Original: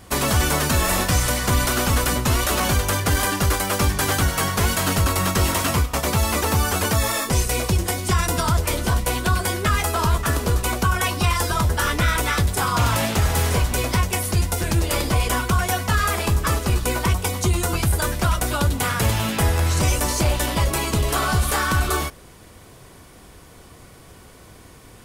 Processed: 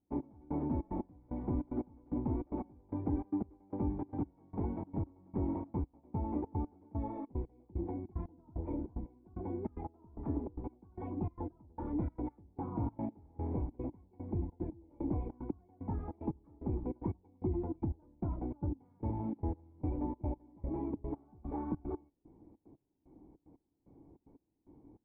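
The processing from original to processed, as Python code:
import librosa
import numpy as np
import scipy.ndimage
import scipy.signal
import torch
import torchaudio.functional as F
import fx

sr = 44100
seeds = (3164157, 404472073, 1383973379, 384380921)

y = fx.step_gate(x, sr, bpm=149, pattern='.x...xxx', floor_db=-24.0, edge_ms=4.5)
y = fx.formant_cascade(y, sr, vowel='u')
y = F.gain(torch.from_numpy(y), -2.0).numpy()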